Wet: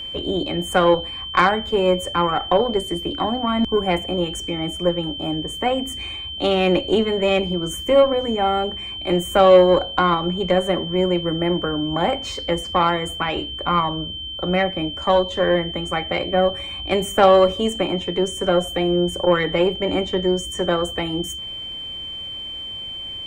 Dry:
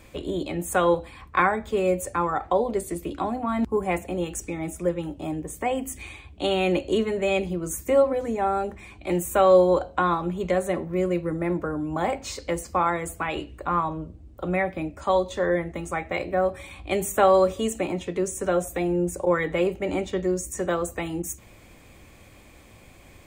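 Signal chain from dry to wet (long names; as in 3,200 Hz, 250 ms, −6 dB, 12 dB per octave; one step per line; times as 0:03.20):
high-shelf EQ 5,300 Hz −10.5 dB
harmonic generator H 6 −25 dB, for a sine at −7 dBFS
steady tone 3,100 Hz −34 dBFS
level +5 dB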